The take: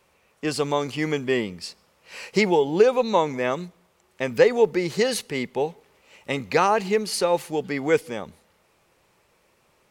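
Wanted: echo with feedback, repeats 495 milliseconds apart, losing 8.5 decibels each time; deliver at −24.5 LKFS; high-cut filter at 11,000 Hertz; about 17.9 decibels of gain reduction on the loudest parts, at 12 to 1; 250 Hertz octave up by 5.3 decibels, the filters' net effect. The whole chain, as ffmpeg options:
ffmpeg -i in.wav -af "lowpass=11000,equalizer=frequency=250:width_type=o:gain=7,acompressor=threshold=-28dB:ratio=12,aecho=1:1:495|990|1485|1980:0.376|0.143|0.0543|0.0206,volume=9dB" out.wav

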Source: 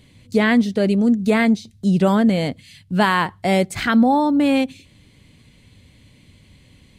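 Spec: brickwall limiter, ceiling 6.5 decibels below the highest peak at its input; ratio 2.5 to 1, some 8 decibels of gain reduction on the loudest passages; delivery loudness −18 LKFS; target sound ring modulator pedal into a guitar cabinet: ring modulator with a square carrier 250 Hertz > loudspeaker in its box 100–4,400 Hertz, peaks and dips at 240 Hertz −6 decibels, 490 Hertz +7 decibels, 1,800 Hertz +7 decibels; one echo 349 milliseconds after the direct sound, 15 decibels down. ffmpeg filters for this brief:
ffmpeg -i in.wav -af "acompressor=threshold=-24dB:ratio=2.5,alimiter=limit=-19dB:level=0:latency=1,aecho=1:1:349:0.178,aeval=exprs='val(0)*sgn(sin(2*PI*250*n/s))':channel_layout=same,highpass=100,equalizer=frequency=240:width_type=q:width=4:gain=-6,equalizer=frequency=490:width_type=q:width=4:gain=7,equalizer=frequency=1800:width_type=q:width=4:gain=7,lowpass=frequency=4400:width=0.5412,lowpass=frequency=4400:width=1.3066,volume=7dB" out.wav

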